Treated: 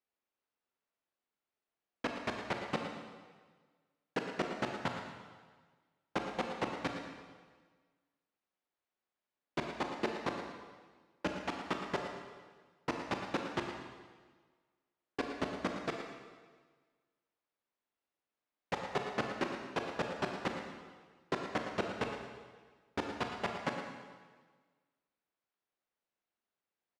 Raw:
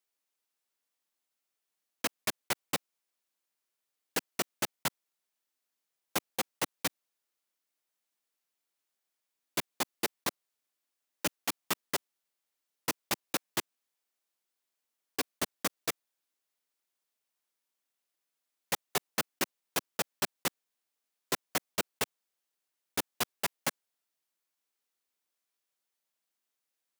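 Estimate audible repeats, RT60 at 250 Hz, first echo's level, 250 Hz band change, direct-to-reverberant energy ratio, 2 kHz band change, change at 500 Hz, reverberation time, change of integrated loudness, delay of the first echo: 1, 1.5 s, −10.5 dB, +2.5 dB, 2.0 dB, −2.5 dB, +2.0 dB, 1.5 s, −4.5 dB, 113 ms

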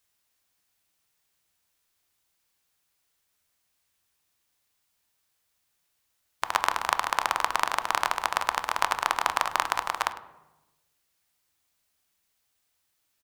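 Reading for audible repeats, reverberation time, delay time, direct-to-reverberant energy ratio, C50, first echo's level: 1, 1.0 s, 103 ms, 9.5 dB, 12.0 dB, −17.5 dB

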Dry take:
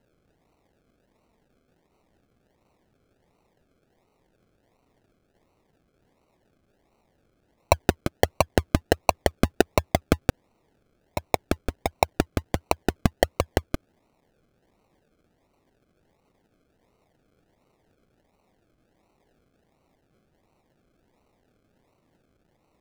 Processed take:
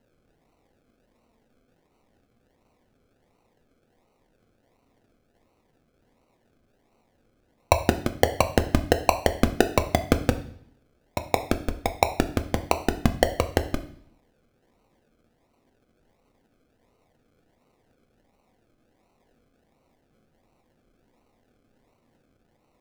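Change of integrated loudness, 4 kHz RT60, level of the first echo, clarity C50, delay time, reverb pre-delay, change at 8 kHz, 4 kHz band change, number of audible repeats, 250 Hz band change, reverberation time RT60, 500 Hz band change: +1.0 dB, 0.65 s, no echo audible, 13.5 dB, no echo audible, 4 ms, +0.5 dB, +0.5 dB, no echo audible, +1.5 dB, 0.60 s, +1.0 dB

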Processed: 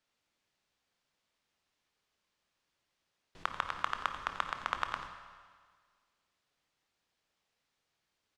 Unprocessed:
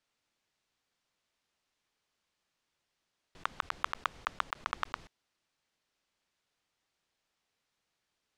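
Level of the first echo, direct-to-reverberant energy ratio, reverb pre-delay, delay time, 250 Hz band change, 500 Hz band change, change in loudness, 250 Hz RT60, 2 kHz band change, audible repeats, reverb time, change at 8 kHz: −13.0 dB, 6.0 dB, 22 ms, 89 ms, +1.0 dB, +1.0 dB, +0.5 dB, 1.7 s, +0.5 dB, 1, 1.7 s, −1.0 dB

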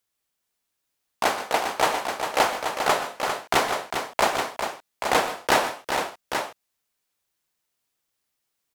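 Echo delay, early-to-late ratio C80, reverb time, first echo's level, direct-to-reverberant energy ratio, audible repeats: 124 ms, no reverb audible, no reverb audible, −14.0 dB, no reverb audible, 3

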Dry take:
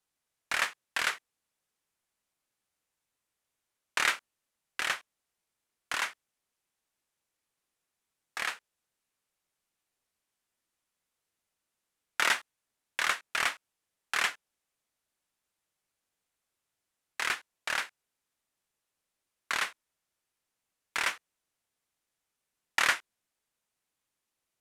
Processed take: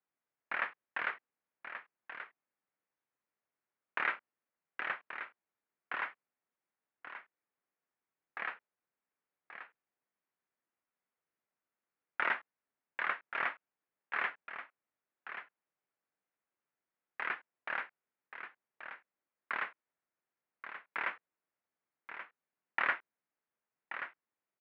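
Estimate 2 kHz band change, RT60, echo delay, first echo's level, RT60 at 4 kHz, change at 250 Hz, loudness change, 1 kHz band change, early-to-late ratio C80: −5.0 dB, no reverb audible, 1,131 ms, −10.0 dB, no reverb audible, −4.0 dB, −8.0 dB, −3.5 dB, no reverb audible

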